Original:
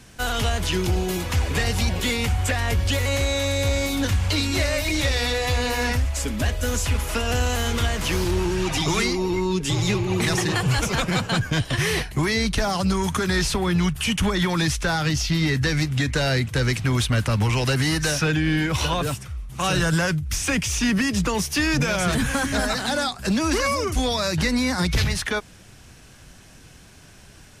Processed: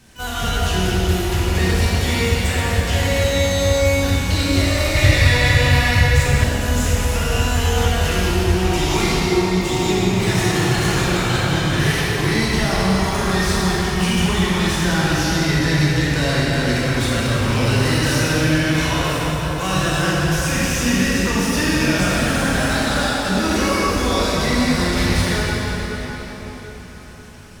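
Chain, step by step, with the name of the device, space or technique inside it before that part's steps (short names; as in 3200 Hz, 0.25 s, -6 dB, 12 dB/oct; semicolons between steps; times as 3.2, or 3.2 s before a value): shimmer-style reverb (harmoniser +12 st -12 dB; reverb RT60 5.1 s, pre-delay 15 ms, DRR -8 dB); 4.95–6.44 graphic EQ 125/250/2000 Hz +12/-5/+6 dB; gain -4.5 dB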